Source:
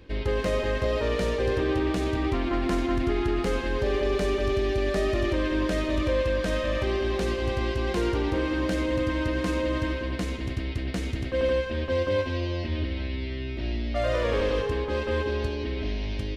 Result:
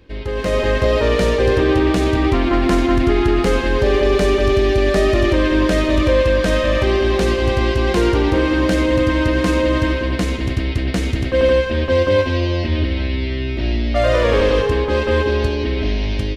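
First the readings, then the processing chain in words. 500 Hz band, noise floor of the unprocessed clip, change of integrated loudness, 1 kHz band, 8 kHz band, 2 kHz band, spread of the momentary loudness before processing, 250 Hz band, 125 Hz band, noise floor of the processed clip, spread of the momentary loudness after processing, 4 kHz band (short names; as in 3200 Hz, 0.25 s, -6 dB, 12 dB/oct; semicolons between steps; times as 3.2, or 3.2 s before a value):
+10.5 dB, -32 dBFS, +10.5 dB, +10.5 dB, +10.5 dB, +10.5 dB, 6 LU, +10.5 dB, +10.5 dB, -22 dBFS, 6 LU, +10.5 dB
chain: AGC gain up to 9.5 dB; gain +1 dB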